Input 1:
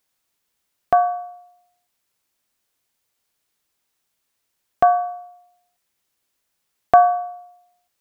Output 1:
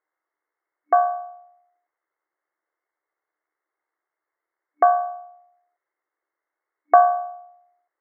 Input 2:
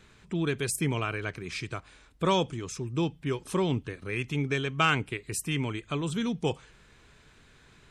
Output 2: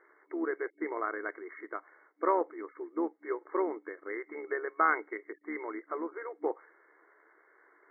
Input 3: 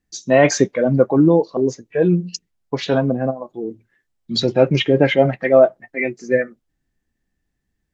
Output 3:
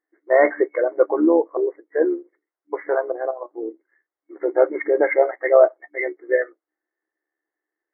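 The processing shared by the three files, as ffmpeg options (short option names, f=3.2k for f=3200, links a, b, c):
-af "equalizer=f=1.2k:t=o:w=0.42:g=3,afftfilt=real='re*between(b*sr/4096,300,2200)':imag='im*between(b*sr/4096,300,2200)':win_size=4096:overlap=0.75,tremolo=f=73:d=0.4"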